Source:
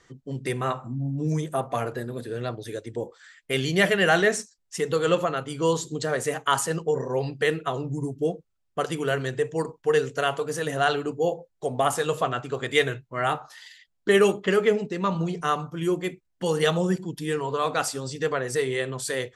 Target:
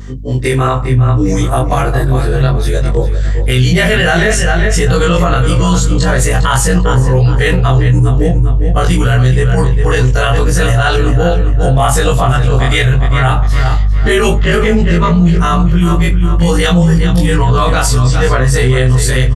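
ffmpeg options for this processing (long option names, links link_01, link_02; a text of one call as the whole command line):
ffmpeg -i in.wav -filter_complex "[0:a]afftfilt=real='re':imag='-im':win_size=2048:overlap=0.75,equalizer=frequency=69:width_type=o:width=1.2:gain=-6,aeval=exprs='val(0)+0.00355*(sin(2*PI*50*n/s)+sin(2*PI*2*50*n/s)/2+sin(2*PI*3*50*n/s)/3+sin(2*PI*4*50*n/s)/4+sin(2*PI*5*50*n/s)/5)':channel_layout=same,asubboost=boost=9.5:cutoff=110,asplit=2[link_01][link_02];[link_02]adelay=402,lowpass=frequency=3900:poles=1,volume=-10dB,asplit=2[link_03][link_04];[link_04]adelay=402,lowpass=frequency=3900:poles=1,volume=0.36,asplit=2[link_05][link_06];[link_06]adelay=402,lowpass=frequency=3900:poles=1,volume=0.36,asplit=2[link_07][link_08];[link_08]adelay=402,lowpass=frequency=3900:poles=1,volume=0.36[link_09];[link_03][link_05][link_07][link_09]amix=inputs=4:normalize=0[link_10];[link_01][link_10]amix=inputs=2:normalize=0,alimiter=level_in=23dB:limit=-1dB:release=50:level=0:latency=1,volume=-1dB" out.wav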